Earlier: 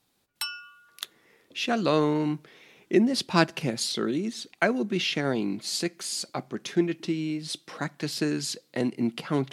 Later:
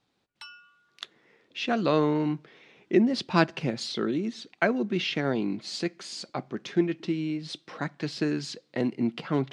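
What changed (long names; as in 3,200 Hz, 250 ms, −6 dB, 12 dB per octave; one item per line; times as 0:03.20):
background −8.5 dB
master: add high-frequency loss of the air 120 metres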